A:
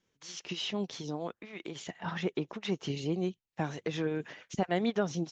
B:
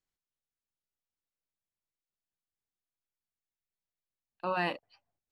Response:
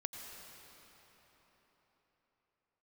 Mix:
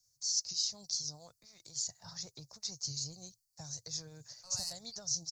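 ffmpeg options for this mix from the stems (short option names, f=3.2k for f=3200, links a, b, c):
-filter_complex "[0:a]volume=-0.5dB,asplit=2[a][b];[1:a]equalizer=f=2.2k:t=o:w=1.9:g=8,acrossover=split=430|3000[c][d][e];[d]acompressor=threshold=-30dB:ratio=6[f];[c][f][e]amix=inputs=3:normalize=0,asoftclip=type=tanh:threshold=-28.5dB,volume=-2dB[g];[b]apad=whole_len=234231[h];[g][h]sidechaingate=range=-7dB:threshold=-51dB:ratio=16:detection=peak[i];[a][i]amix=inputs=2:normalize=0,firequalizer=gain_entry='entry(120,0);entry(180,-20);entry(370,-29);entry(550,-15);entry(3000,-25);entry(4500,14)':delay=0.05:min_phase=1,acrossover=split=150|3000[j][k][l];[k]acompressor=threshold=-49dB:ratio=6[m];[j][m][l]amix=inputs=3:normalize=0"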